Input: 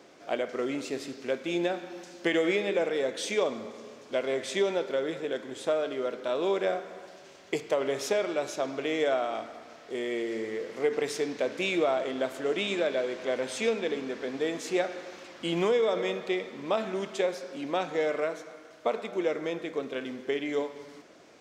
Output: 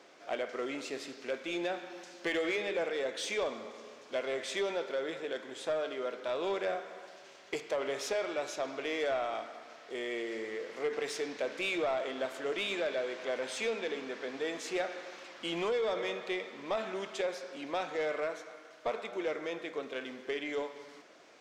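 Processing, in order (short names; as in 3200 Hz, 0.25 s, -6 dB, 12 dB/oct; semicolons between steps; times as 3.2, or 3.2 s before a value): overdrive pedal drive 14 dB, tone 5500 Hz, clips at -14 dBFS; gain -9 dB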